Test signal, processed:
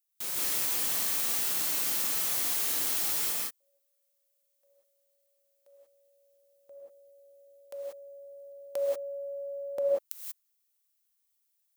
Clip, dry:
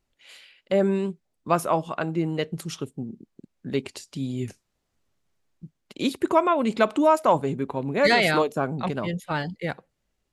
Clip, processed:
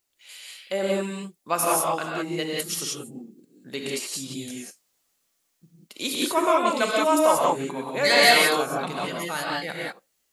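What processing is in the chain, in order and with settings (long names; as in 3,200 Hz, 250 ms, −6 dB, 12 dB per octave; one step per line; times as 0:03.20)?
RIAA equalisation recording
reverb whose tail is shaped and stops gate 210 ms rising, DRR −3.5 dB
level −3.5 dB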